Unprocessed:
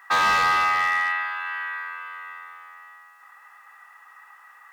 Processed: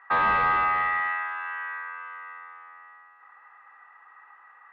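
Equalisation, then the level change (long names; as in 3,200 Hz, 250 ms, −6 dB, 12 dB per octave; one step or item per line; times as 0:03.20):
high-frequency loss of the air 380 metres
bass and treble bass −5 dB, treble −13 dB
low-shelf EQ 220 Hz +9 dB
0.0 dB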